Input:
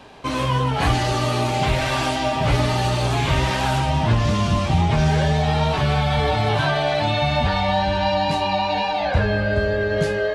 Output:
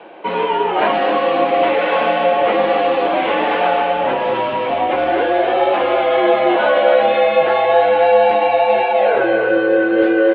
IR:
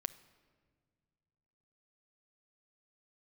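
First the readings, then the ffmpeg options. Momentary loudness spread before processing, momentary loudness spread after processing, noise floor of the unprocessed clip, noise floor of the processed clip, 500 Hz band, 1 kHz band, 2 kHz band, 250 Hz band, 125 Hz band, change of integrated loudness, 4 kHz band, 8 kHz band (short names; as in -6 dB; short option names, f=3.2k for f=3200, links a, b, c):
2 LU, 5 LU, -23 dBFS, -20 dBFS, +10.0 dB, +6.5 dB, +4.5 dB, +3.0 dB, -20.5 dB, +5.5 dB, -1.5 dB, under -35 dB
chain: -filter_complex "[0:a]equalizer=f=560:t=o:w=1.7:g=6.5,asplit=2[a][b];[b]adelay=260,highpass=300,lowpass=3.4k,asoftclip=type=hard:threshold=-13.5dB,volume=-6dB[c];[a][c]amix=inputs=2:normalize=0,highpass=f=370:t=q:w=0.5412,highpass=f=370:t=q:w=1.307,lowpass=f=3.2k:t=q:w=0.5176,lowpass=f=3.2k:t=q:w=0.7071,lowpass=f=3.2k:t=q:w=1.932,afreqshift=-82,volume=3dB"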